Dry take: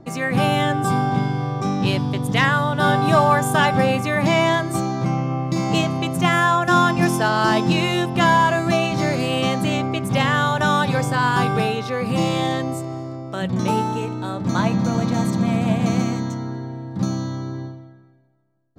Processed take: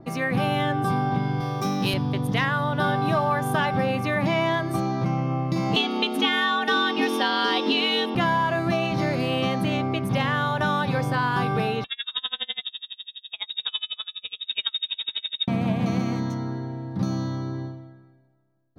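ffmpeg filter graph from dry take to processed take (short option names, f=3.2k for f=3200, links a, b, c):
-filter_complex "[0:a]asettb=1/sr,asplit=3[a][b][c];[a]atrim=end=1.404[d];[b]atrim=start=1.4:end=1.94,asetpts=PTS-STARTPTS,afade=t=in:d=0.004:c=qsin,afade=t=out:st=0.536:d=0.004:c=qsin,highpass=120,aemphasis=mode=production:type=75fm[e];[c]atrim=start=1.936[f];[d][e]acrossfade=d=0.004:c1=hsin:c2=qsin[g];[g][f]acrossfade=d=0.004:c1=qsin:c2=hsin,asettb=1/sr,asplit=3[h][i][j];[h]atrim=end=5.764[k];[i]atrim=start=5.76:end=8.15,asetpts=PTS-STARTPTS,afade=t=in:d=0.004:c=qsin,afade=t=out:st=2.386:d=0.004:c=qsin,equalizer=f=3.3k:t=o:w=0.85:g=14.5,afreqshift=97[l];[j]atrim=start=8.146[m];[k][l]acrossfade=d=0.004:c1=hsin:c2=qsin[n];[n][m]acrossfade=d=0.004:c1=qsin:c2=hsin,asettb=1/sr,asplit=3[o][p][q];[o]atrim=end=11.844[r];[p]atrim=start=11.84:end=15.48,asetpts=PTS-STARTPTS,afade=t=in:d=0.004:c=qsin,afade=t=out:st=3.636:d=0.004:c=qsin,bandreject=f=720:w=5.5,lowpass=f=3.3k:t=q:w=0.5098,lowpass=f=3.3k:t=q:w=0.6013,lowpass=f=3.3k:t=q:w=0.9,lowpass=f=3.3k:t=q:w=2.563,afreqshift=-3900,aeval=exprs='val(0)*pow(10,-34*(0.5-0.5*cos(2*PI*12*n/s))/20)':c=same[s];[q]atrim=start=15.476[t];[r][s]acrossfade=d=0.004:c1=hsin:c2=qsin[u];[u][t]acrossfade=d=0.004:c1=qsin:c2=hsin,equalizer=f=7.5k:t=o:w=0.35:g=-15,acompressor=threshold=-19dB:ratio=3,adynamicequalizer=threshold=0.0112:dfrequency=4700:dqfactor=0.7:tfrequency=4700:tqfactor=0.7:attack=5:release=100:ratio=0.375:range=1.5:mode=cutabove:tftype=highshelf,volume=-1.5dB"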